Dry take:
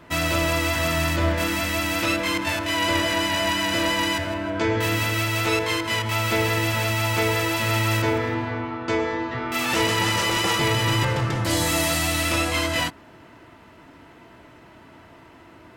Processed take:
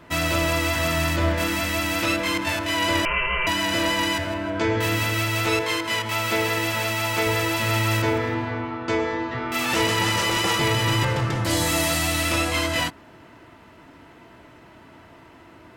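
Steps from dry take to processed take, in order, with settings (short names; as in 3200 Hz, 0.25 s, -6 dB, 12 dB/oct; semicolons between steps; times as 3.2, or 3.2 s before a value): 3.05–3.47 inverted band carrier 3000 Hz; 5.61–7.27 HPF 200 Hz 6 dB/oct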